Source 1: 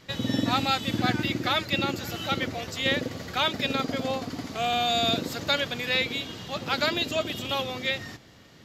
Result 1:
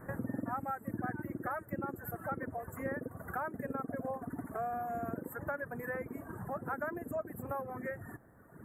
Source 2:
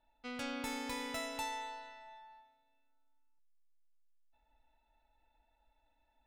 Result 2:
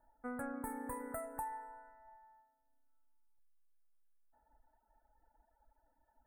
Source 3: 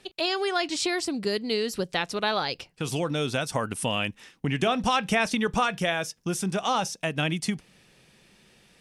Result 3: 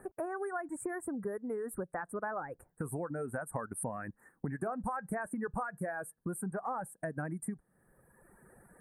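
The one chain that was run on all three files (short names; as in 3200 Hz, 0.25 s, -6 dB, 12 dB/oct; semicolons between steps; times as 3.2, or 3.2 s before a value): Chebyshev band-stop 1700–8800 Hz, order 4; reverb removal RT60 1.4 s; compressor 3:1, threshold -45 dBFS; gain +5.5 dB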